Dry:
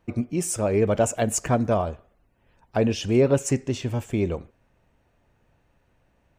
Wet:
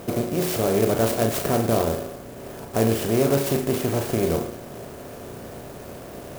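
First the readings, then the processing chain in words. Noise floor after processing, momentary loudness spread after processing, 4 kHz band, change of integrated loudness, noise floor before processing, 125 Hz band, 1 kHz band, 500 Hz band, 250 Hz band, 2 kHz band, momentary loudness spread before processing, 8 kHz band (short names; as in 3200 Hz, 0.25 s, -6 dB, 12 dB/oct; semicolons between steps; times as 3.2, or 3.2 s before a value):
-39 dBFS, 17 LU, +4.5 dB, +1.5 dB, -67 dBFS, 0.0 dB, +2.0 dB, +2.0 dB, +1.0 dB, +2.5 dB, 8 LU, -1.5 dB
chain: per-bin compression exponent 0.4; flutter echo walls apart 6.1 m, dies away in 0.35 s; clock jitter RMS 0.06 ms; gain -5 dB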